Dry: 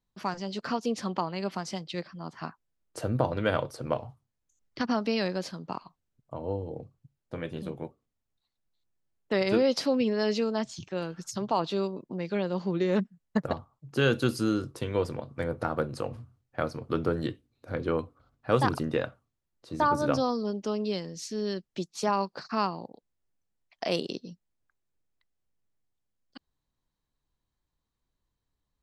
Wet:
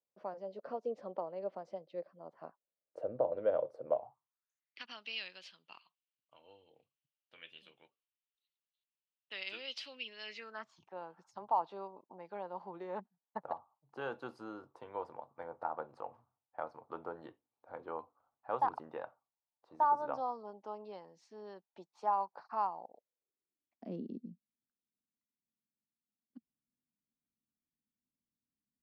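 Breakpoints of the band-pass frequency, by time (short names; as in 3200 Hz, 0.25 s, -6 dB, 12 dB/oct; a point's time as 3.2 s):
band-pass, Q 4.4
3.87 s 560 Hz
4.86 s 2900 Hz
10.19 s 2900 Hz
10.86 s 860 Hz
22.7 s 860 Hz
23.86 s 230 Hz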